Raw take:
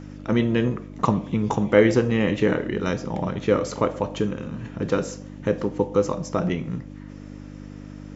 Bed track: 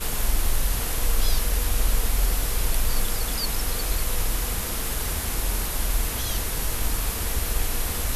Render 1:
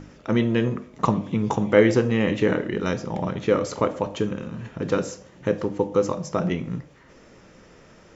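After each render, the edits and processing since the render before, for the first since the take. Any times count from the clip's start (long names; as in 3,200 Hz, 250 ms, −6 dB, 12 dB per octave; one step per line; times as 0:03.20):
hum removal 50 Hz, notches 6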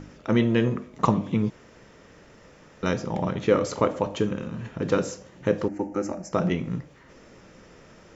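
0:01.50–0:02.83: fill with room tone
0:05.68–0:06.33: phaser with its sweep stopped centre 700 Hz, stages 8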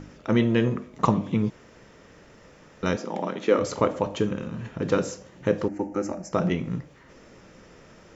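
0:02.96–0:03.59: high-pass filter 220 Hz 24 dB per octave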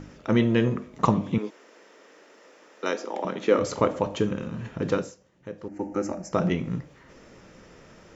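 0:01.38–0:03.25: high-pass filter 300 Hz 24 dB per octave
0:04.87–0:05.90: duck −15 dB, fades 0.28 s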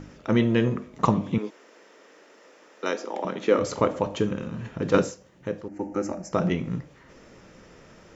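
0:04.94–0:05.61: clip gain +7.5 dB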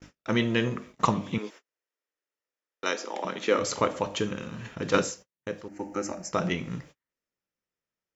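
noise gate −42 dBFS, range −41 dB
tilt shelving filter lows −5.5 dB, about 1,200 Hz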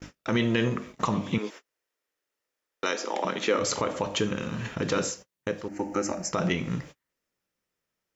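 in parallel at +1.5 dB: downward compressor, threshold −35 dBFS, peak gain reduction 16.5 dB
on the sum: brickwall limiter −14 dBFS, peak gain reduction 10 dB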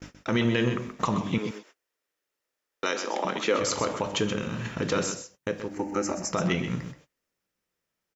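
single-tap delay 128 ms −9.5 dB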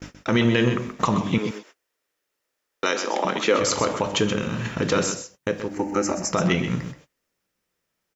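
level +5 dB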